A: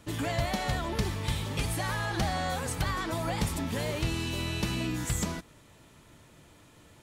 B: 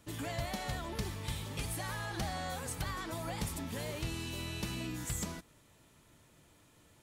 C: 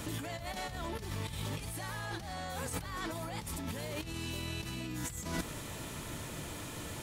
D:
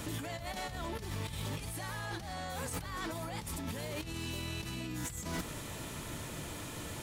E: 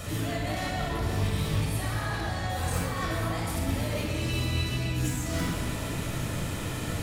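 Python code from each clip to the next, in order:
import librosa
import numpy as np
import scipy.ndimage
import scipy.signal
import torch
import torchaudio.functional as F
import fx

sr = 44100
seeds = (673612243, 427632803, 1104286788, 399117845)

y1 = fx.high_shelf(x, sr, hz=7400.0, db=6.5)
y1 = y1 * 10.0 ** (-8.0 / 20.0)
y2 = fx.over_compress(y1, sr, threshold_db=-50.0, ratio=-1.0)
y2 = y2 * 10.0 ** (10.5 / 20.0)
y3 = 10.0 ** (-30.5 / 20.0) * (np.abs((y2 / 10.0 ** (-30.5 / 20.0) + 3.0) % 4.0 - 2.0) - 1.0)
y4 = fx.room_shoebox(y3, sr, seeds[0], volume_m3=3700.0, walls='mixed', distance_m=6.4)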